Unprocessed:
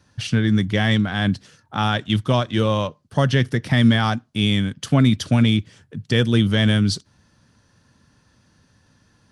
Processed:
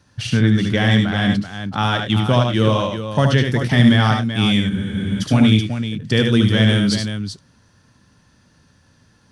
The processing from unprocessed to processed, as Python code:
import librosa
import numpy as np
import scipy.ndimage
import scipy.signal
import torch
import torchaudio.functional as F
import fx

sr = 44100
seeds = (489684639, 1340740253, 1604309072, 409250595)

y = fx.echo_multitap(x, sr, ms=(73, 98, 384), db=(-5.5, -11.5, -9.0))
y = fx.spec_freeze(y, sr, seeds[0], at_s=4.71, hold_s=0.5)
y = F.gain(torch.from_numpy(y), 1.5).numpy()